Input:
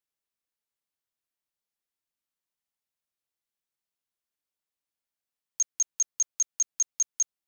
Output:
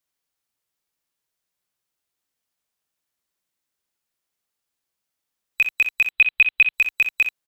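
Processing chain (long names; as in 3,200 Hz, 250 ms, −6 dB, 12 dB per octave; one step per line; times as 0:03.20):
neighbouring bands swapped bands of 4,000 Hz
0:06.06–0:06.74: high shelf with overshoot 4,600 Hz −10 dB, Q 3
on a send: ambience of single reflections 47 ms −15 dB, 62 ms −8 dB
on the sum: level +7.5 dB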